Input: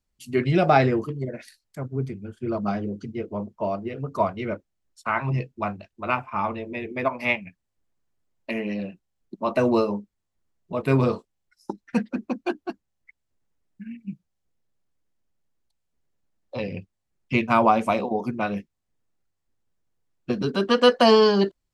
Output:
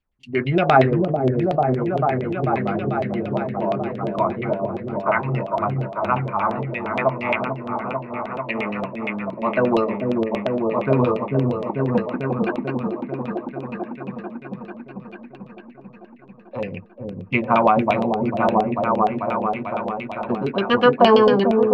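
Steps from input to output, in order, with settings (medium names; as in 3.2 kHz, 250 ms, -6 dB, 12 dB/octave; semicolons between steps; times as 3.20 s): delay with an opening low-pass 443 ms, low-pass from 400 Hz, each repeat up 1 oct, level 0 dB; LFO low-pass saw down 8.6 Hz 600–3300 Hz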